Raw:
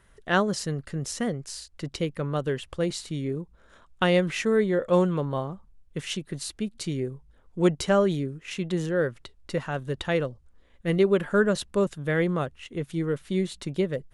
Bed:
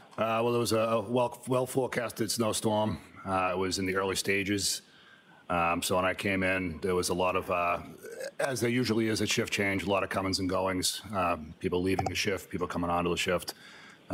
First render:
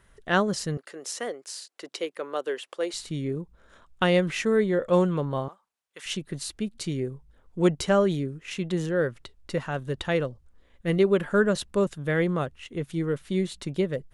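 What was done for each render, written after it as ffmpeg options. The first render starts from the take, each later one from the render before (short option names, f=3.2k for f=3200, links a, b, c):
-filter_complex "[0:a]asettb=1/sr,asplit=3[a][b][c];[a]atrim=end=0.774[d];[b]atrim=start=0.77:end=2.94,asetpts=PTS-STARTPTS,afade=t=in:d=0.004:c=qsin,afade=t=out:st=2.166:d=0.004:c=qsin,highpass=f=360:w=0.5412,highpass=f=360:w=1.3066[e];[c]atrim=start=2.936[f];[d][e]acrossfade=d=0.004:c1=hsin:c2=qsin[g];[g][f]acrossfade=d=0.004:c1=qsin:c2=hsin,asettb=1/sr,asplit=3[h][i][j];[h]atrim=end=5.484[k];[i]atrim=start=5.48:end=6.06,asetpts=PTS-STARTPTS,afade=t=in:d=0.004:c=qsin,afade=t=out:st=0.576:d=0.004:c=qsin,highpass=850[l];[j]atrim=start=6.056[m];[k][l]acrossfade=d=0.004:c1=hsin:c2=qsin[n];[n][m]acrossfade=d=0.004:c1=qsin:c2=hsin"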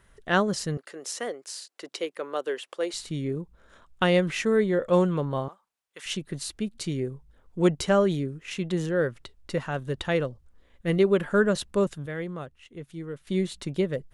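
-filter_complex "[0:a]asplit=3[a][b][c];[a]atrim=end=12.062[d];[b]atrim=start=12.058:end=13.272,asetpts=PTS-STARTPTS,volume=-9dB[e];[c]atrim=start=13.268[f];[d][e]acrossfade=d=0.004:c1=hsin:c2=hsin[g];[g][f]acrossfade=d=0.004:c1=hsin:c2=hsin"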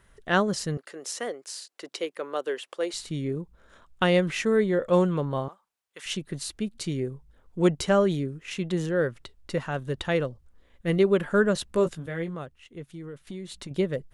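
-filter_complex "[0:a]asettb=1/sr,asplit=3[a][b][c];[a]atrim=end=11.684[d];[b]atrim=start=11.68:end=12.35,asetpts=PTS-STARTPTS,afade=t=in:d=0.004:c=qsin,afade=t=out:st=0.666:d=0.004:c=qsin,asplit=2[e][f];[f]adelay=18,volume=-7dB[g];[e][g]amix=inputs=2:normalize=0,atrim=end_sample=29547[h];[c]atrim=start=12.346[i];[d][h]acrossfade=d=0.004:c1=hsin:c2=qsin[j];[j][i]acrossfade=d=0.004:c1=qsin:c2=hsin,asettb=1/sr,asplit=3[k][l][m];[k]atrim=end=12.934[n];[l]atrim=start=12.93:end=13.71,asetpts=PTS-STARTPTS,afade=t=in:d=0.004:c=qsin,afade=t=out:st=0.776:d=0.004:c=qsin,acompressor=threshold=-35dB:ratio=5:attack=3.2:release=140:knee=1:detection=peak[o];[m]atrim=start=13.706[p];[n][o]acrossfade=d=0.004:c1=hsin:c2=qsin[q];[q][p]acrossfade=d=0.004:c1=qsin:c2=hsin"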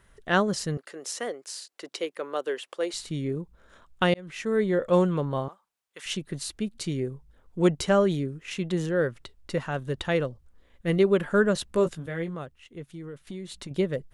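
-filter_complex "[0:a]asplit=2[a][b];[a]atrim=end=4.14,asetpts=PTS-STARTPTS,afade=t=out:st=4.136:d=0.004:c=hsin[c];[b]atrim=start=4.14,asetpts=PTS-STARTPTS,afade=t=in:d=0.56[d];[c][d]concat=n=2:v=0:a=1"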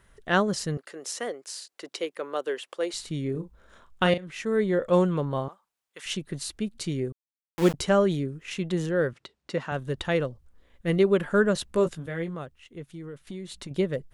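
-filter_complex "[0:a]asettb=1/sr,asplit=3[a][b][c];[a]atrim=end=3.314[d];[b]atrim=start=3.31:end=4.27,asetpts=PTS-STARTPTS,afade=t=in:d=0.004:c=qsin,afade=t=out:st=0.956:d=0.004:c=qsin,asplit=2[e][f];[f]adelay=38,volume=-9dB[g];[e][g]amix=inputs=2:normalize=0,atrim=end_sample=42336[h];[c]atrim=start=4.266[i];[d][h]acrossfade=d=0.004:c1=hsin:c2=qsin[j];[j][i]acrossfade=d=0.004:c1=qsin:c2=hsin,asettb=1/sr,asplit=3[k][l][m];[k]atrim=end=7.124[n];[l]atrim=start=7.12:end=7.74,asetpts=PTS-STARTPTS,afade=t=in:d=0.004:c=qsin,afade=t=out:st=0.616:d=0.004:c=qsin,aeval=exprs='val(0)*gte(abs(val(0)),0.0473)':c=same[o];[m]atrim=start=7.736[p];[n][o]acrossfade=d=0.004:c1=hsin:c2=qsin[q];[q][p]acrossfade=d=0.004:c1=qsin:c2=hsin,asettb=1/sr,asplit=3[r][s][t];[r]atrim=end=9.134[u];[s]atrim=start=9.13:end=9.72,asetpts=PTS-STARTPTS,afade=t=in:d=0.004:c=qsin,afade=t=out:st=0.586:d=0.004:c=qsin,highpass=160,lowpass=6.9k[v];[t]atrim=start=9.716[w];[u][v]acrossfade=d=0.004:c1=hsin:c2=qsin[x];[x][w]acrossfade=d=0.004:c1=qsin:c2=hsin"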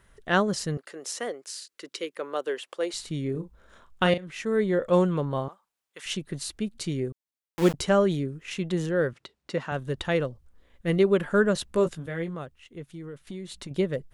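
-filter_complex "[0:a]asettb=1/sr,asplit=3[a][b][c];[a]atrim=end=1.484[d];[b]atrim=start=1.48:end=2.14,asetpts=PTS-STARTPTS,afade=t=in:d=0.004:c=qsin,afade=t=out:st=0.656:d=0.004:c=qsin,equalizer=f=750:t=o:w=0.62:g=-13.5[e];[c]atrim=start=2.136[f];[d][e]acrossfade=d=0.004:c1=hsin:c2=qsin[g];[g][f]acrossfade=d=0.004:c1=qsin:c2=hsin"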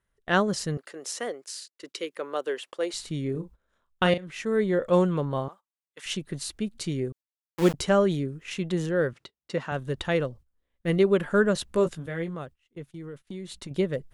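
-af "agate=range=-19dB:threshold=-45dB:ratio=16:detection=peak"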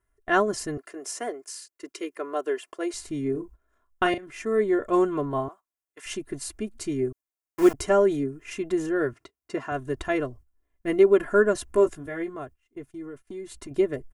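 -af "equalizer=f=3.7k:t=o:w=0.88:g=-11.5,aecho=1:1:2.9:0.86"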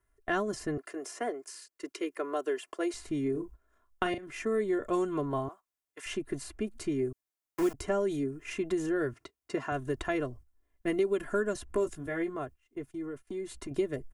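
-filter_complex "[0:a]acrossover=split=250|3000[a][b][c];[a]acompressor=threshold=-37dB:ratio=4[d];[b]acompressor=threshold=-30dB:ratio=4[e];[c]acompressor=threshold=-46dB:ratio=4[f];[d][e][f]amix=inputs=3:normalize=0"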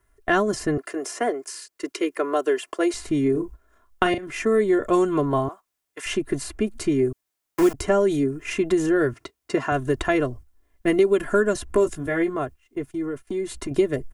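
-af "volume=10dB"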